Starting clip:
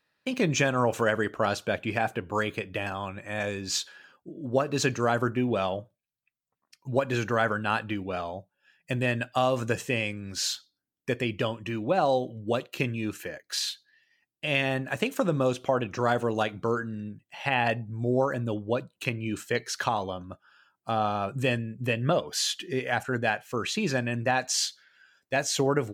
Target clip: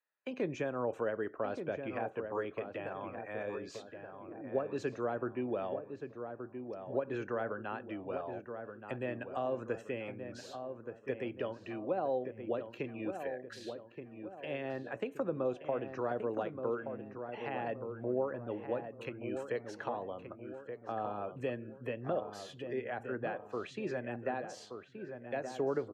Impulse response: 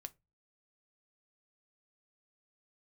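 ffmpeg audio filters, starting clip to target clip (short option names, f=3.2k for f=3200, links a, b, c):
-filter_complex "[0:a]afftdn=nr=16:nf=-50,acrossover=split=440[a][b];[b]acompressor=threshold=-48dB:ratio=2.5[c];[a][c]amix=inputs=2:normalize=0,acrossover=split=390 2400:gain=0.126 1 0.2[d][e][f];[d][e][f]amix=inputs=3:normalize=0,asplit=2[g][h];[h]adelay=1175,lowpass=f=1.5k:p=1,volume=-7dB,asplit=2[i][j];[j]adelay=1175,lowpass=f=1.5k:p=1,volume=0.46,asplit=2[k][l];[l]adelay=1175,lowpass=f=1.5k:p=1,volume=0.46,asplit=2[m][n];[n]adelay=1175,lowpass=f=1.5k:p=1,volume=0.46,asplit=2[o][p];[p]adelay=1175,lowpass=f=1.5k:p=1,volume=0.46[q];[g][i][k][m][o][q]amix=inputs=6:normalize=0,volume=1dB"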